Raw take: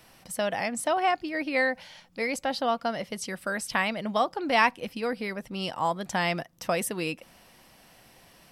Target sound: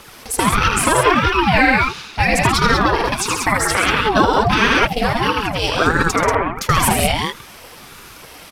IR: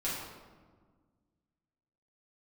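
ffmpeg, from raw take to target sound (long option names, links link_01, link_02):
-filter_complex "[0:a]highpass=180,asplit=2[link_01][link_02];[link_02]acompressor=threshold=-32dB:ratio=6,volume=-2dB[link_03];[link_01][link_03]amix=inputs=2:normalize=0,aphaser=in_gain=1:out_gain=1:delay=4.4:decay=0.56:speed=1.7:type=triangular,asettb=1/sr,asplit=3[link_04][link_05][link_06];[link_04]atrim=end=6.164[link_07];[link_05]atrim=start=6.16:end=6.56,asetpts=PTS-STARTPTS,afade=type=in:duration=0.004:curve=qsin,afade=type=out:start_time=0.396:duration=0.004:curve=qsin,lowpass=frequency=1600:width=0.5412,lowpass=frequency=1600:width=1.3066[link_08];[link_06]atrim=start=6.556[link_09];[link_07][link_08]acrossfade=duration=0.004:curve1=hsin:curve2=qsin[link_10];[link_10][link_09]acrossfade=duration=0.004:curve1=qsin:curve2=hsin,asplit=2[link_11][link_12];[link_12]aecho=0:1:78.72|134.1|186.6:0.562|0.398|0.562[link_13];[link_11][link_13]amix=inputs=2:normalize=0,alimiter=level_in=11dB:limit=-1dB:release=50:level=0:latency=1,aeval=exprs='val(0)*sin(2*PI*470*n/s+470*0.5/1.5*sin(2*PI*1.5*n/s))':channel_layout=same"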